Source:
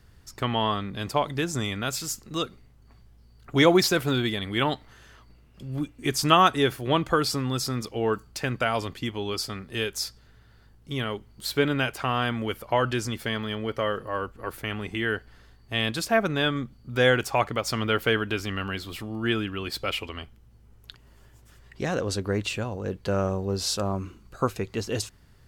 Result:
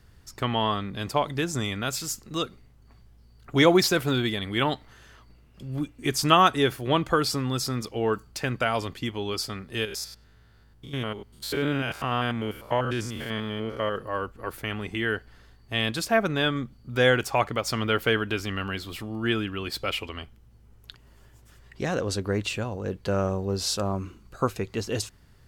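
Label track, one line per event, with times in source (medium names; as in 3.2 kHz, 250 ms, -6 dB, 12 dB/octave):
9.850000	13.960000	spectrogram pixelated in time every 100 ms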